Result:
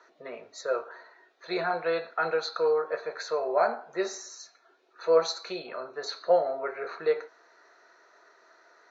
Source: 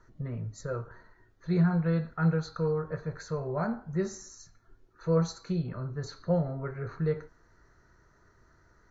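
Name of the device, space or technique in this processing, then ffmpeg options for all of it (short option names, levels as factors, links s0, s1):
phone speaker on a table: -af "highpass=f=410:w=0.5412,highpass=f=410:w=1.3066,equalizer=f=690:t=q:w=4:g=7,equalizer=f=2500:t=q:w=4:g=8,equalizer=f=3800:t=q:w=4:g=8,lowpass=f=6400:w=0.5412,lowpass=f=6400:w=1.3066,volume=2.11"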